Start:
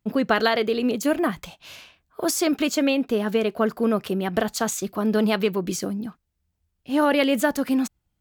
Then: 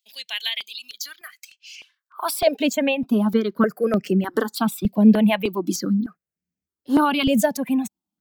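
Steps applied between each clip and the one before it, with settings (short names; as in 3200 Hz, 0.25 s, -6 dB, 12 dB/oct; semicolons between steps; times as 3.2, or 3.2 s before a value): high-pass sweep 3500 Hz -> 200 Hz, 1.74–2.83; reverb removal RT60 2 s; step phaser 3.3 Hz 340–3700 Hz; gain +4.5 dB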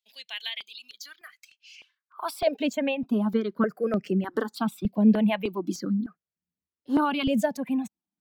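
high shelf 6000 Hz -11 dB; gain -5.5 dB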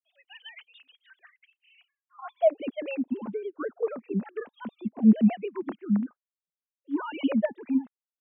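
sine-wave speech; gain -1.5 dB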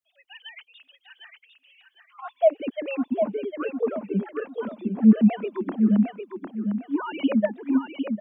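feedback echo 0.754 s, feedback 28%, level -6 dB; gain +3 dB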